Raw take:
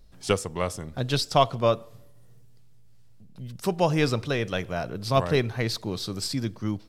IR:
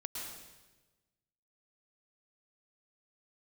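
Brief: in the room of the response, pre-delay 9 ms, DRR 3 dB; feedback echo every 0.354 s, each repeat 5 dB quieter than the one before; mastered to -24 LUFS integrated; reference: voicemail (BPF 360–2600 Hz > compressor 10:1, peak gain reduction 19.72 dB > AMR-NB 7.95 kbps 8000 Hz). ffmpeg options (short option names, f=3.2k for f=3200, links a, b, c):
-filter_complex "[0:a]aecho=1:1:354|708|1062|1416|1770|2124|2478:0.562|0.315|0.176|0.0988|0.0553|0.031|0.0173,asplit=2[a][b];[1:a]atrim=start_sample=2205,adelay=9[c];[b][c]afir=irnorm=-1:irlink=0,volume=-3dB[d];[a][d]amix=inputs=2:normalize=0,highpass=360,lowpass=2.6k,acompressor=threshold=-33dB:ratio=10,volume=15dB" -ar 8000 -c:a libopencore_amrnb -b:a 7950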